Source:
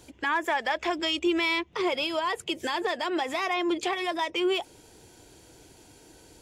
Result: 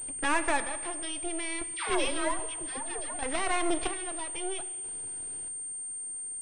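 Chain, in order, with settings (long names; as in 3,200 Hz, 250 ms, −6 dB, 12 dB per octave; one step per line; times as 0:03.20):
half-wave rectification
square-wave tremolo 0.62 Hz, depth 65%, duty 40%
0:01.74–0:03.19: all-pass dispersion lows, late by 137 ms, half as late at 890 Hz
reverb whose tail is shaped and stops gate 470 ms falling, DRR 11 dB
switching amplifier with a slow clock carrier 8,700 Hz
level +3 dB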